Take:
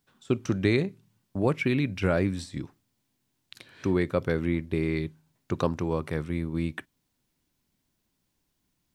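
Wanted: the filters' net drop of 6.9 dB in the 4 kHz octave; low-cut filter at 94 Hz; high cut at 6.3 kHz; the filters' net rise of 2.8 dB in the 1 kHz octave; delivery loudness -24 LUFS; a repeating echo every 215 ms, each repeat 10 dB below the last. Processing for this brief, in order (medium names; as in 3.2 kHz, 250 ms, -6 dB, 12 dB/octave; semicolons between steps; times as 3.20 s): high-pass 94 Hz; low-pass 6.3 kHz; peaking EQ 1 kHz +4 dB; peaking EQ 4 kHz -8 dB; feedback delay 215 ms, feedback 32%, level -10 dB; trim +4.5 dB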